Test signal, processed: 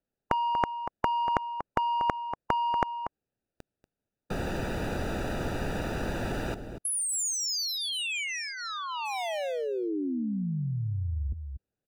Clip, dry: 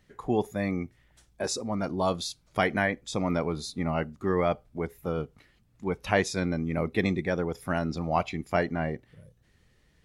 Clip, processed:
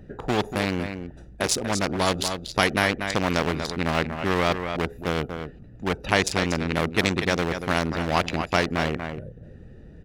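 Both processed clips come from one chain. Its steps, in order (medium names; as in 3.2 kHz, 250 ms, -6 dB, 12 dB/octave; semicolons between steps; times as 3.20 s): local Wiener filter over 41 samples; on a send: delay 238 ms -14.5 dB; on the sum: spectrum-flattening compressor 2:1; trim +6.5 dB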